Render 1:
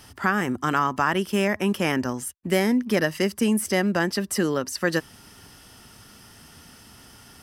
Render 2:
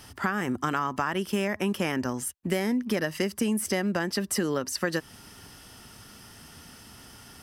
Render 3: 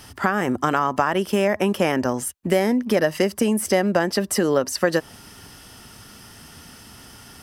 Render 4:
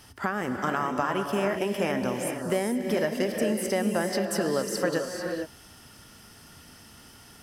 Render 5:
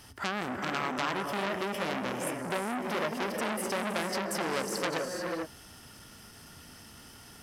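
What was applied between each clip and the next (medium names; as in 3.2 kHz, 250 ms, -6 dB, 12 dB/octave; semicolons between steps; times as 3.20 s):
compression, threshold -23 dBFS, peak gain reduction 7.5 dB
dynamic bell 610 Hz, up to +8 dB, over -44 dBFS, Q 1.2; trim +4.5 dB
gated-style reverb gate 480 ms rising, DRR 3 dB; trim -8 dB
transformer saturation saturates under 3.6 kHz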